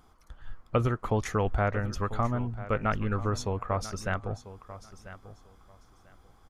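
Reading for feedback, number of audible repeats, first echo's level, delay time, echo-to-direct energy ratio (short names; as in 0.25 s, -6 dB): 20%, 2, -15.0 dB, 0.993 s, -15.0 dB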